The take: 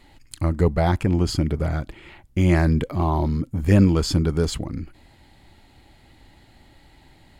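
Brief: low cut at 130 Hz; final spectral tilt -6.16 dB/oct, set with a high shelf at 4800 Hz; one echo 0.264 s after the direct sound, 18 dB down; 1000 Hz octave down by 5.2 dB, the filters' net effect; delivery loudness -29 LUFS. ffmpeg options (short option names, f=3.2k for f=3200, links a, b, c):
-af "highpass=130,equalizer=f=1k:t=o:g=-7.5,highshelf=f=4.8k:g=5.5,aecho=1:1:264:0.126,volume=-5dB"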